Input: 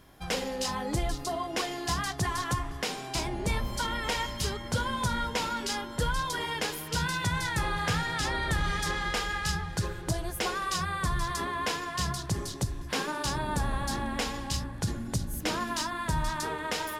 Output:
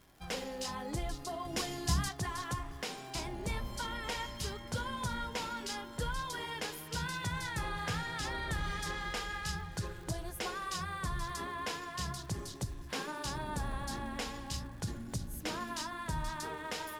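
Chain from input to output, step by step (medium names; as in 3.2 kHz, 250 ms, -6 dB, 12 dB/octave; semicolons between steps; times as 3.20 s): 1.45–2.09 s: tone controls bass +12 dB, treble +7 dB; crackle 300 per s -42 dBFS; trim -7.5 dB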